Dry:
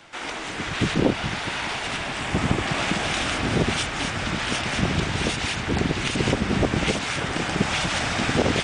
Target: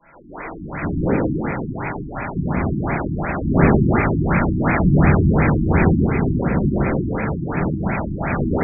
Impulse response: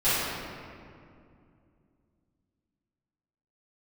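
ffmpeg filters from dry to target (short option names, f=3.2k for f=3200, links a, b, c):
-filter_complex "[0:a]asettb=1/sr,asplit=3[a][b][c];[a]atrim=end=3.394[d];[b]atrim=start=3.39:end=5.82,asetpts=PTS-STARTPTS,afade=t=in:d=0.004:c=qsin,afade=t=out:st=2.426:d=0.004:c=qsin,acontrast=79[e];[c]atrim=start=5.816[f];[d][e]acrossfade=d=0.004:c1=hsin:c2=qsin[g];[g][f]acrossfade=d=0.004:c1=qsin:c2=hsin[h];[1:a]atrim=start_sample=2205,asetrate=52920,aresample=44100[i];[h][i]afir=irnorm=-1:irlink=0,afftfilt=real='re*lt(b*sr/1024,340*pow(2600/340,0.5+0.5*sin(2*PI*2.8*pts/sr)))':imag='im*lt(b*sr/1024,340*pow(2600/340,0.5+0.5*sin(2*PI*2.8*pts/sr)))':win_size=1024:overlap=0.75,volume=-11dB"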